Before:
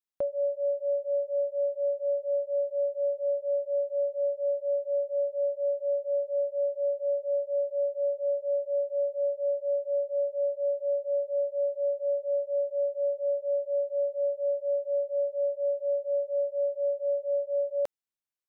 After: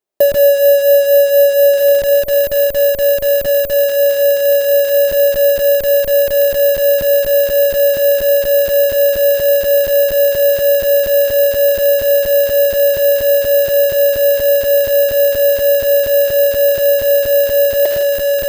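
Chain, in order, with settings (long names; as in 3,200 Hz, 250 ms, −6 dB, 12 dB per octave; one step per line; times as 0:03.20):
dynamic equaliser 680 Hz, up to +3 dB, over −41 dBFS, Q 1.4
bad sample-rate conversion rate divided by 3×, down none, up zero stuff
hollow resonant body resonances 380/610 Hz, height 17 dB, ringing for 25 ms
on a send: feedback delay with all-pass diffusion 1,891 ms, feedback 50%, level −4.5 dB
on the sum: reverb whose tail is shaped and stops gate 190 ms rising, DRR 7.5 dB
in parallel at −6.5 dB: comparator with hysteresis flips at −19 dBFS
on the sum: level +1 dB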